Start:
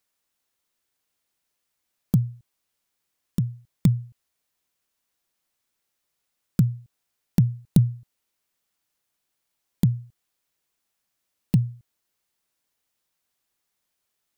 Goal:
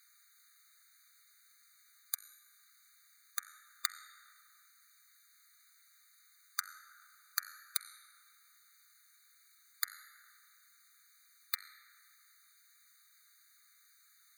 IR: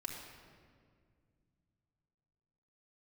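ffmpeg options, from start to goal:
-filter_complex "[0:a]acompressor=threshold=0.01:ratio=2,bandreject=f=90.69:t=h:w=4,bandreject=f=181.38:t=h:w=4,bandreject=f=272.07:t=h:w=4,bandreject=f=362.76:t=h:w=4,bandreject=f=453.45:t=h:w=4,bandreject=f=544.14:t=h:w=4,bandreject=f=634.83:t=h:w=4,bandreject=f=725.52:t=h:w=4,bandreject=f=816.21:t=h:w=4,bandreject=f=906.9:t=h:w=4,bandreject=f=997.59:t=h:w=4,bandreject=f=1088.28:t=h:w=4,bandreject=f=1178.97:t=h:w=4,bandreject=f=1269.66:t=h:w=4,bandreject=f=1360.35:t=h:w=4,bandreject=f=1451.04:t=h:w=4,bandreject=f=1541.73:t=h:w=4,bandreject=f=1632.42:t=h:w=4,bandreject=f=1723.11:t=h:w=4,bandreject=f=1813.8:t=h:w=4,bandreject=f=1904.49:t=h:w=4,bandreject=f=1995.18:t=h:w=4,bandreject=f=2085.87:t=h:w=4,bandreject=f=2176.56:t=h:w=4,bandreject=f=2267.25:t=h:w=4,bandreject=f=2357.94:t=h:w=4,bandreject=f=2448.63:t=h:w=4,bandreject=f=2539.32:t=h:w=4,bandreject=f=2630.01:t=h:w=4,bandreject=f=2720.7:t=h:w=4,bandreject=f=2811.39:t=h:w=4,bandreject=f=2902.08:t=h:w=4,bandreject=f=2992.77:t=h:w=4,bandreject=f=3083.46:t=h:w=4,bandreject=f=3174.15:t=h:w=4,bandreject=f=3264.84:t=h:w=4,asplit=2[s0][s1];[1:a]atrim=start_sample=2205,asetrate=28665,aresample=44100[s2];[s1][s2]afir=irnorm=-1:irlink=0,volume=0.501[s3];[s0][s3]amix=inputs=2:normalize=0,afftfilt=real='re*eq(mod(floor(b*sr/1024/1200),2),1)':imag='im*eq(mod(floor(b*sr/1024/1200),2),1)':win_size=1024:overlap=0.75,volume=4.73"

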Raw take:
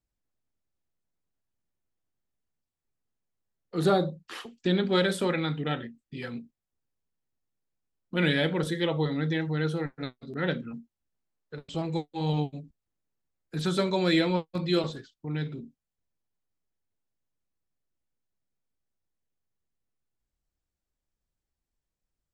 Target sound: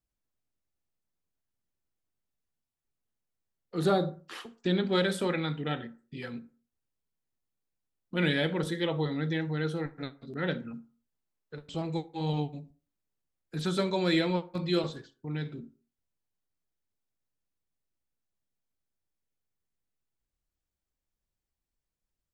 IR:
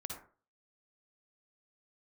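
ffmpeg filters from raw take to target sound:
-filter_complex "[0:a]asplit=2[s0][s1];[1:a]atrim=start_sample=2205,afade=t=out:st=0.38:d=0.01,atrim=end_sample=17199[s2];[s1][s2]afir=irnorm=-1:irlink=0,volume=0.211[s3];[s0][s3]amix=inputs=2:normalize=0,volume=0.668"

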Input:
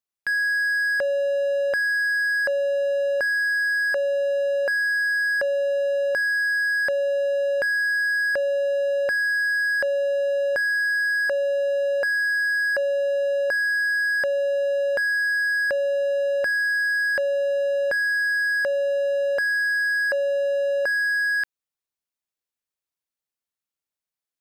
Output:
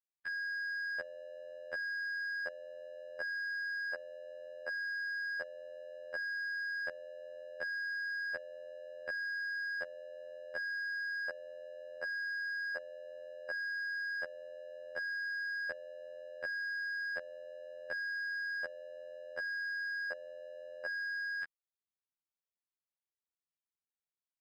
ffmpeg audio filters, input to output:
-af "adynamicsmooth=sensitivity=5:basefreq=5100,afftfilt=real='hypot(re,im)*cos(PI*b)':imag='0':win_size=2048:overlap=0.75,volume=0.355"

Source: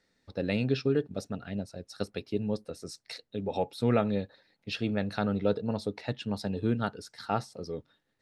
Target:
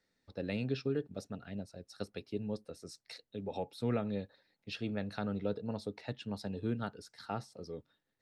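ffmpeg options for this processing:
-filter_complex "[0:a]acrossover=split=380[s0][s1];[s1]acompressor=threshold=0.0398:ratio=4[s2];[s0][s2]amix=inputs=2:normalize=0,volume=0.447"

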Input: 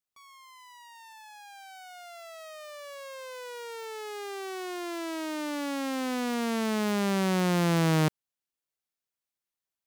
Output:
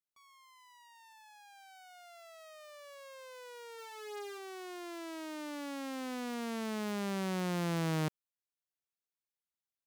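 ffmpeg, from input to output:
-filter_complex "[0:a]asplit=3[s0][s1][s2];[s0]afade=t=out:st=3.77:d=0.02[s3];[s1]asplit=2[s4][s5];[s5]adelay=17,volume=0.794[s6];[s4][s6]amix=inputs=2:normalize=0,afade=t=in:st=3.77:d=0.02,afade=t=out:st=4.37:d=0.02[s7];[s2]afade=t=in:st=4.37:d=0.02[s8];[s3][s7][s8]amix=inputs=3:normalize=0,volume=0.355"

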